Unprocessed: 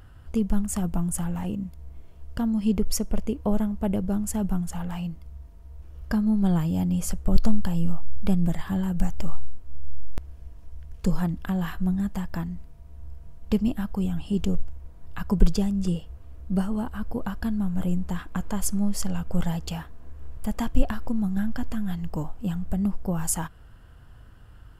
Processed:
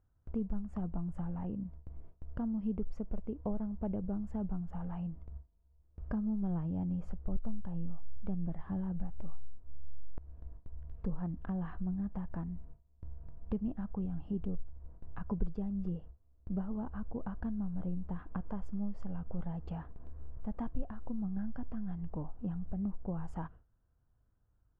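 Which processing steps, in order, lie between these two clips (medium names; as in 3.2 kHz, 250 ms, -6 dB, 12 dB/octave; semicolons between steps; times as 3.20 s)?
low-pass 1.1 kHz 12 dB/octave; gate with hold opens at -32 dBFS; compression 2:1, threshold -34 dBFS, peak gain reduction 14 dB; trim -4 dB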